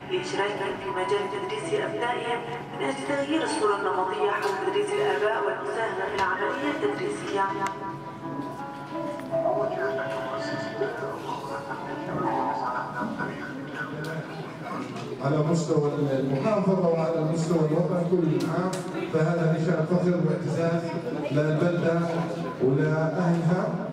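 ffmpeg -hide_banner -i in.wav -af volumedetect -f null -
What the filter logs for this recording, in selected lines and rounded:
mean_volume: -26.5 dB
max_volume: -11.6 dB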